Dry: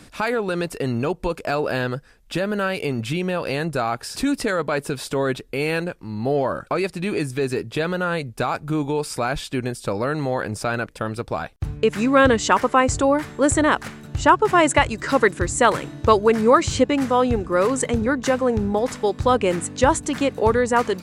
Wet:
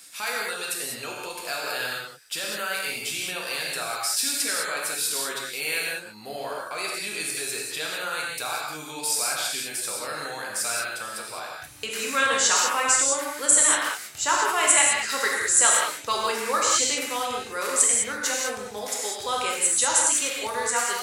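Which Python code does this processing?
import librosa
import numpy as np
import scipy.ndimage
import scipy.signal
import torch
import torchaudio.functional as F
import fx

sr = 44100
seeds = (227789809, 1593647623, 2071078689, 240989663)

y = np.diff(x, prepend=0.0)
y = fx.rev_gated(y, sr, seeds[0], gate_ms=230, shape='flat', drr_db=-3.5)
y = F.gain(torch.from_numpy(y), 5.5).numpy()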